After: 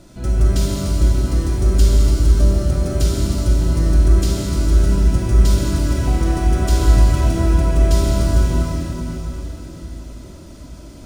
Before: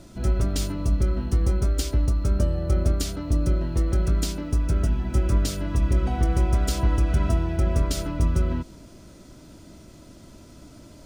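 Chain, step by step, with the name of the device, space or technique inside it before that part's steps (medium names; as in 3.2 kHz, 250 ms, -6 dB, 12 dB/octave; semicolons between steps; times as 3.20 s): cathedral (reverberation RT60 4.3 s, pre-delay 28 ms, DRR -4 dB); trim +1 dB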